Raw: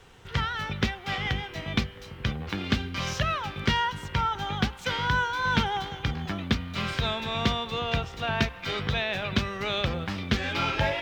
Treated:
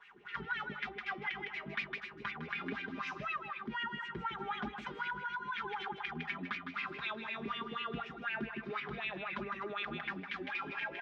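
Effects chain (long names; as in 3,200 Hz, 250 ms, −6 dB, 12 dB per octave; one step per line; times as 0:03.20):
high-shelf EQ 4,100 Hz −8 dB
comb filter 4.9 ms, depth 86%
LFO wah 4 Hz 300–2,400 Hz, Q 5.2
multi-tap delay 157/258 ms −10.5/−16 dB
brickwall limiter −30.5 dBFS, peak gain reduction 11 dB
parametric band 540 Hz −13 dB 1 octave
speech leveller within 4 dB 0.5 s
level +4.5 dB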